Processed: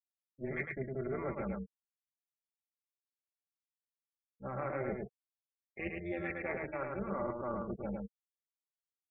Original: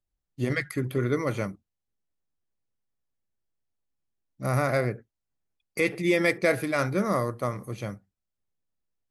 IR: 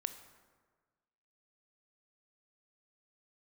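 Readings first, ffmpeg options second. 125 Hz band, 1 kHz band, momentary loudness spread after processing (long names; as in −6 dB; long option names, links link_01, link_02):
−14.5 dB, −9.5 dB, 8 LU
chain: -filter_complex "[0:a]highpass=83,acrossover=split=150 3000:gain=0.251 1 0.178[link_01][link_02][link_03];[link_01][link_02][link_03]amix=inputs=3:normalize=0,afftfilt=real='re*gte(hypot(re,im),0.0316)':imag='im*gte(hypot(re,im),0.0316)':win_size=1024:overlap=0.75,highshelf=frequency=4800:gain=6.5,acrossover=split=3300[link_04][link_05];[link_05]acompressor=threshold=-58dB:ratio=4:attack=1:release=60[link_06];[link_04][link_06]amix=inputs=2:normalize=0,aecho=1:1:5.2:0.69,areverse,acompressor=threshold=-37dB:ratio=10,areverse,tremolo=f=260:d=0.71,aecho=1:1:107:0.668,volume=4dB"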